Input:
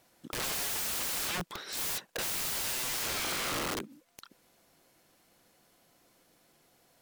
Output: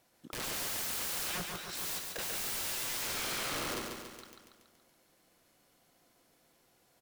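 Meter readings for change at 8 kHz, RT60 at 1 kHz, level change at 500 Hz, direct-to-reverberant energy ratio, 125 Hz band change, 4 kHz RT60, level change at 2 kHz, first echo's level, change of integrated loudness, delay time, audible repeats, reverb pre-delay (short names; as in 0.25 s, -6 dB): -2.5 dB, none, -2.5 dB, none, -3.0 dB, none, -2.5 dB, -4.5 dB, -3.0 dB, 0.141 s, 7, none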